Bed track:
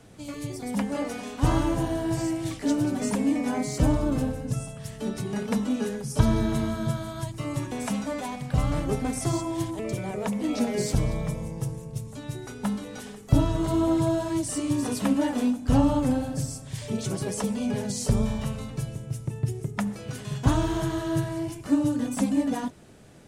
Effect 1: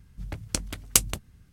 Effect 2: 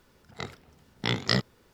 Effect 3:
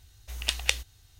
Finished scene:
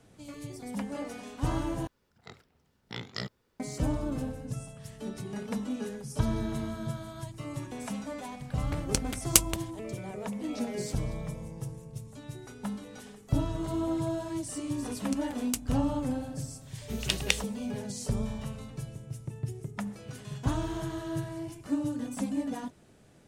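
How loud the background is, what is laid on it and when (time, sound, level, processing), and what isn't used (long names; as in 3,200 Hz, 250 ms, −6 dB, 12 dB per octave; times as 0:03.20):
bed track −7.5 dB
0:01.87: overwrite with 2 −12 dB
0:08.40: mix in 1 −1 dB
0:14.58: mix in 1 −14.5 dB
0:16.61: mix in 3 −1.5 dB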